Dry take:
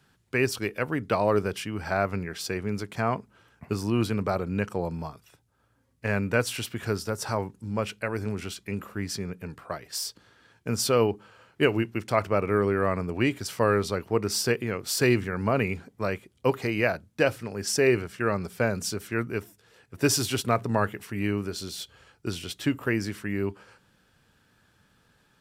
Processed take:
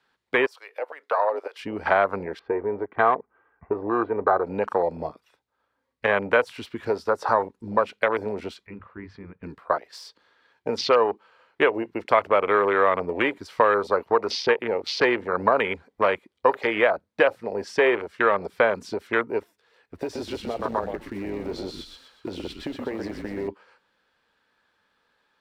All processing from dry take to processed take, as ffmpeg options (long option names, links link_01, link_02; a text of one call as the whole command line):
ffmpeg -i in.wav -filter_complex "[0:a]asettb=1/sr,asplit=3[link_01][link_02][link_03];[link_01]atrim=end=0.464[link_04];[link_02]atrim=start=0.46:end=1.59,asetpts=PTS-STARTPTS,afade=type=in:duration=0.004:curve=qsin,afade=type=out:start_time=1.126:duration=0.004:curve=qsin,highpass=frequency=520:width=0.5412,highpass=frequency=520:width=1.3066,acompressor=threshold=-37dB:ratio=2:attack=3.2:release=140:knee=1:detection=peak[link_05];[link_03]atrim=start=1.586[link_06];[link_04][link_05]acrossfade=duration=0.004:curve1=hsin:curve2=qsin[link_07];[link_07][link_06]acrossfade=duration=0.004:curve1=qsin:curve2=hsin,asettb=1/sr,asplit=3[link_08][link_09][link_10];[link_08]atrim=end=2.394[link_11];[link_09]atrim=start=2.39:end=4.45,asetpts=PTS-STARTPTS,afade=type=in:duration=0.004:curve=qsin,afade=type=out:start_time=2.056:duration=0.004:curve=qsin,lowpass=frequency=1800:width=0.5412,lowpass=frequency=1800:width=1.3066,aecho=1:1:2.6:0.42,atrim=end_sample=90846[link_12];[link_10]atrim=start=4.446[link_13];[link_11][link_12]acrossfade=duration=0.004:curve1=hsin:curve2=qsin[link_14];[link_14][link_13]acrossfade=duration=0.004:curve1=qsin:curve2=hsin,asettb=1/sr,asplit=3[link_15][link_16][link_17];[link_15]atrim=end=8.664[link_18];[link_16]atrim=start=8.66:end=9.43,asetpts=PTS-STARTPTS,afade=type=in:duration=0.004:curve=qsin,afade=type=out:start_time=0.766:duration=0.004:curve=qsin,lowpass=1800,equalizer=frequency=270:width_type=o:width=2:gain=-11.5,bandreject=frequency=50:width_type=h:width=6,bandreject=frequency=100:width_type=h:width=6[link_19];[link_17]atrim=start=9.426[link_20];[link_18][link_19]acrossfade=duration=0.004:curve1=hsin:curve2=qsin[link_21];[link_21][link_20]acrossfade=duration=0.004:curve1=qsin:curve2=hsin,asettb=1/sr,asplit=3[link_22][link_23][link_24];[link_22]atrim=end=19.964[link_25];[link_23]atrim=start=19.96:end=23.48,asetpts=PTS-STARTPTS,afade=type=in:duration=0.004:curve=qsin,afade=type=out:start_time=3.516:duration=0.004:curve=qsin,acompressor=threshold=-29dB:ratio=12:attack=3.2:release=140:knee=1:detection=peak,asplit=6[link_26][link_27][link_28][link_29][link_30][link_31];[link_27]adelay=123,afreqshift=-37,volume=-4.5dB[link_32];[link_28]adelay=246,afreqshift=-74,volume=-11.8dB[link_33];[link_29]adelay=369,afreqshift=-111,volume=-19.2dB[link_34];[link_30]adelay=492,afreqshift=-148,volume=-26.5dB[link_35];[link_31]adelay=615,afreqshift=-185,volume=-33.8dB[link_36];[link_26][link_32][link_33][link_34][link_35][link_36]amix=inputs=6:normalize=0,atrim=end_sample=155232,acrusher=bits=4:mode=log:mix=0:aa=0.000001[link_37];[link_24]atrim=start=23.476[link_38];[link_25][link_37]acrossfade=duration=0.004:curve1=hsin:curve2=qsin[link_39];[link_39][link_38]acrossfade=duration=0.004:curve1=qsin:curve2=hsin,afwtdn=0.0251,equalizer=frequency=125:width_type=o:width=1:gain=-8,equalizer=frequency=250:width_type=o:width=1:gain=4,equalizer=frequency=500:width_type=o:width=1:gain=10,equalizer=frequency=1000:width_type=o:width=1:gain=12,equalizer=frequency=2000:width_type=o:width=1:gain=10,equalizer=frequency=4000:width_type=o:width=1:gain=11,acrossover=split=510|1300|5800[link_40][link_41][link_42][link_43];[link_40]acompressor=threshold=-30dB:ratio=4[link_44];[link_41]acompressor=threshold=-19dB:ratio=4[link_45];[link_42]acompressor=threshold=-28dB:ratio=4[link_46];[link_43]acompressor=threshold=-52dB:ratio=4[link_47];[link_44][link_45][link_46][link_47]amix=inputs=4:normalize=0" out.wav